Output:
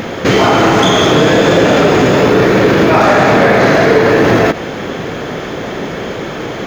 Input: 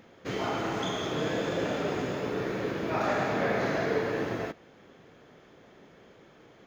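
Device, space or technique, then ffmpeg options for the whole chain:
loud club master: -af "acompressor=threshold=-31dB:ratio=2.5,asoftclip=type=hard:threshold=-26.5dB,alimiter=level_in=35dB:limit=-1dB:release=50:level=0:latency=1,volume=-1dB"

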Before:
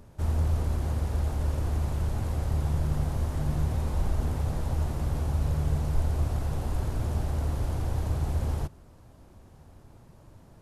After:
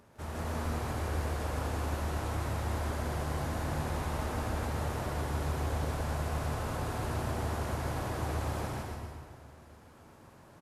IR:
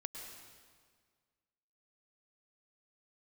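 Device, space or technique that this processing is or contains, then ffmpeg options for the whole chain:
stadium PA: -filter_complex "[0:a]highpass=frequency=240:poles=1,equalizer=frequency=1600:width_type=o:width=1.9:gain=5,aecho=1:1:157.4|279.9:1|0.562[link_01];[1:a]atrim=start_sample=2205[link_02];[link_01][link_02]afir=irnorm=-1:irlink=0"

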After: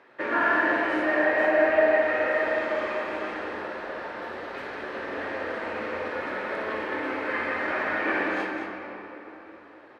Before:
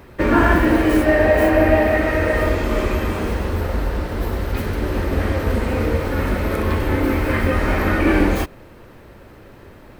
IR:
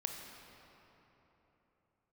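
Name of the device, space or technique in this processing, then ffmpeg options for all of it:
station announcement: -filter_complex "[0:a]highpass=470,lowpass=3600,equalizer=frequency=1700:width_type=o:width=0.3:gain=5.5,aecho=1:1:55.39|212.8:0.355|0.398[link_01];[1:a]atrim=start_sample=2205[link_02];[link_01][link_02]afir=irnorm=-1:irlink=0,volume=-6.5dB"

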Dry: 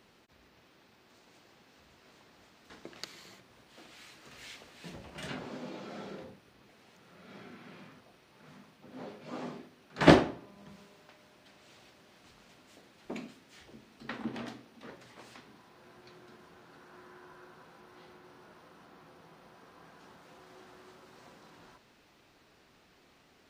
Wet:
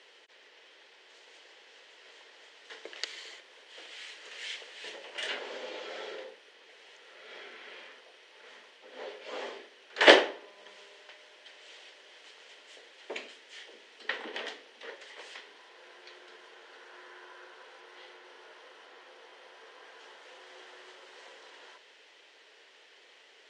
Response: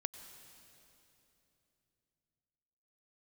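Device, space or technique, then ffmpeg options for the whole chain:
phone speaker on a table: -af "highpass=frequency=450:width=0.5412,highpass=frequency=450:width=1.3066,equalizer=frequency=450:width_type=q:width=4:gain=5,equalizer=frequency=720:width_type=q:width=4:gain=-5,equalizer=frequency=1200:width_type=q:width=4:gain=-6,equalizer=frequency=1900:width_type=q:width=4:gain=6,equalizer=frequency=3100:width_type=q:width=4:gain=8,lowpass=frequency=8400:width=0.5412,lowpass=frequency=8400:width=1.3066,volume=5dB"

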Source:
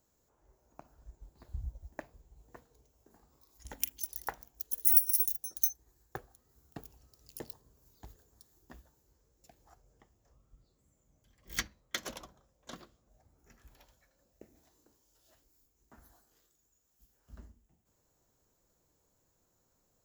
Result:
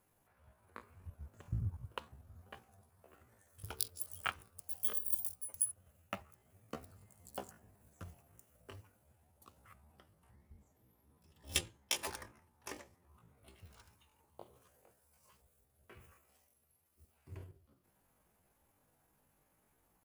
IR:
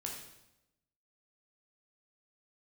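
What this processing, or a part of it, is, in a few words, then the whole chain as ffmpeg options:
chipmunk voice: -af "asetrate=72056,aresample=44100,atempo=0.612027,volume=1.5dB"

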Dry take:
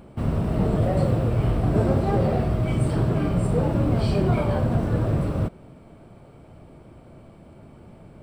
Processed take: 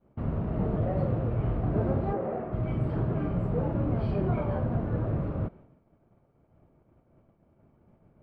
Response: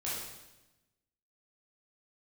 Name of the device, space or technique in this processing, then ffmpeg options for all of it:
hearing-loss simulation: -filter_complex "[0:a]asettb=1/sr,asplit=3[link_01][link_02][link_03];[link_01]atrim=end=2.134[link_04];[link_02]atrim=start=2.13:end=2.53,asetpts=PTS-STARTPTS,afade=type=in:duration=0.004:curve=qsin,afade=type=out:start_time=0.396:duration=0.004:curve=qsin,acrossover=split=220 2400:gain=0.126 1 0.2[link_05][link_06][link_07];[link_05][link_06][link_07]amix=inputs=3:normalize=0[link_08];[link_03]atrim=start=2.526[link_09];[link_04][link_08]acrossfade=duration=0.004:curve1=hsin:curve2=qsin[link_10];[link_10][link_09]acrossfade=duration=0.004:curve1=qsin:curve2=hsin,lowpass=1900,agate=range=-33dB:threshold=-38dB:ratio=3:detection=peak,volume=-6.5dB"

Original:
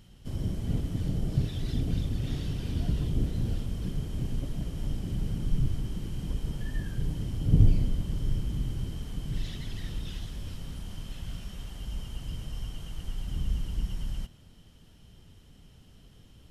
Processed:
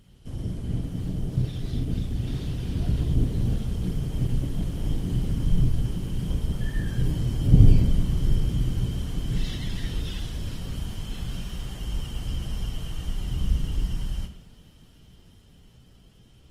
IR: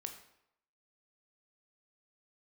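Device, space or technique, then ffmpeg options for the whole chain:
speakerphone in a meeting room: -filter_complex "[1:a]atrim=start_sample=2205[link_01];[0:a][link_01]afir=irnorm=-1:irlink=0,dynaudnorm=framelen=470:gausssize=13:maxgain=6dB,volume=3.5dB" -ar 48000 -c:a libopus -b:a 20k

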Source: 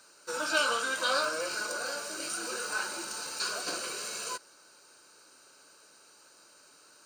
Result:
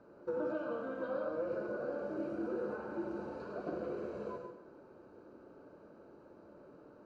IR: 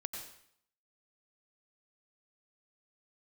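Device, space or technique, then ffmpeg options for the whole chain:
television next door: -filter_complex "[0:a]acompressor=threshold=-41dB:ratio=4,lowpass=410[link_01];[1:a]atrim=start_sample=2205[link_02];[link_01][link_02]afir=irnorm=-1:irlink=0,volume=16dB"

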